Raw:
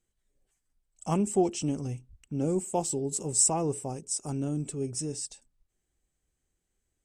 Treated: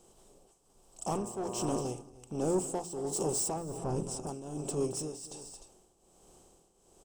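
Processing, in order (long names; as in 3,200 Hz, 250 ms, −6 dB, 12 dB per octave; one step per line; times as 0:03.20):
compressor on every frequency bin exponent 0.6
0:01.10–0:01.79: hum with harmonics 120 Hz, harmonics 10, −35 dBFS −3 dB per octave
0:03.56–0:04.27: bass and treble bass +10 dB, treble −8 dB
soft clipping −21 dBFS, distortion −13 dB
octave-band graphic EQ 125/250/2,000/8,000 Hz −8/−5/−10/−7 dB
multi-tap delay 222/303 ms −14/−15 dB
shaped tremolo triangle 1.3 Hz, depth 80%
hum removal 57.62 Hz, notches 6
level +3 dB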